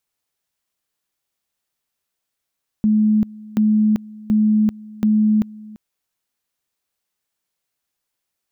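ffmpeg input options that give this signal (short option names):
-f lavfi -i "aevalsrc='pow(10,(-12-22*gte(mod(t,0.73),0.39))/20)*sin(2*PI*214*t)':d=2.92:s=44100"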